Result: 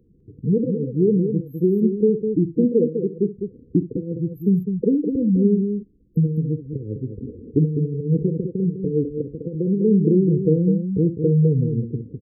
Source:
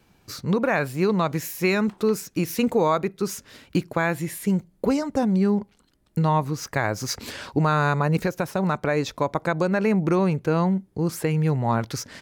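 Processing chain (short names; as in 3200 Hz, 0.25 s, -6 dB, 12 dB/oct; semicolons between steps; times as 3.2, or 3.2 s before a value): treble ducked by the level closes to 990 Hz, closed at -16.5 dBFS; spectral gate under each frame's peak -15 dB strong; band shelf 1100 Hz +15.5 dB; in parallel at +1 dB: compressor, threshold -22 dBFS, peak gain reduction 15 dB; on the sum: limiter -4.5 dBFS, peak gain reduction 8.5 dB; AGC gain up to 6 dB; brick-wall FIR band-stop 510–12000 Hz; tapped delay 45/66/204 ms -17/-14.5/-7 dB; gain -3 dB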